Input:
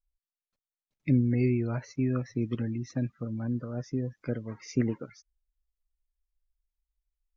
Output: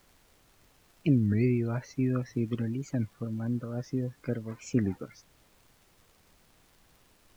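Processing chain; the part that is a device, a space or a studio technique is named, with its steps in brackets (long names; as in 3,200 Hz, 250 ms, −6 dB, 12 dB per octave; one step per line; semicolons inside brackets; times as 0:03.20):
warped LP (wow of a warped record 33 1/3 rpm, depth 250 cents; surface crackle; pink noise bed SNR 31 dB)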